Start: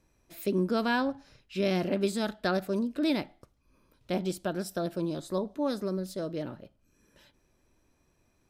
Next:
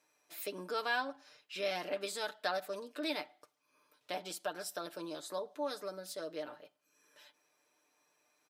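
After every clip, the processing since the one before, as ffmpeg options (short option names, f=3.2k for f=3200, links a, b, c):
-filter_complex "[0:a]highpass=620,aecho=1:1:6.7:0.63,asplit=2[a][b];[b]acompressor=threshold=-41dB:ratio=6,volume=-1dB[c];[a][c]amix=inputs=2:normalize=0,volume=-6dB"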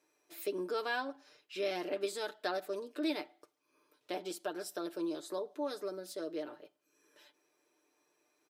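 -af "equalizer=f=360:t=o:w=0.58:g=13,volume=-2.5dB"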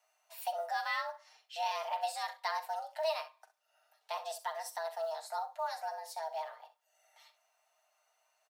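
-af "acrusher=bits=9:mode=log:mix=0:aa=0.000001,afreqshift=320,aecho=1:1:42|65:0.188|0.188"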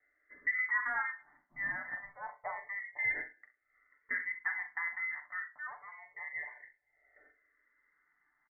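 -filter_complex "[0:a]asplit=2[a][b];[b]adelay=41,volume=-11dB[c];[a][c]amix=inputs=2:normalize=0,lowpass=f=2.3k:t=q:w=0.5098,lowpass=f=2.3k:t=q:w=0.6013,lowpass=f=2.3k:t=q:w=0.9,lowpass=f=2.3k:t=q:w=2.563,afreqshift=-2700,asplit=2[d][e];[e]afreqshift=-0.28[f];[d][f]amix=inputs=2:normalize=1,volume=3.5dB"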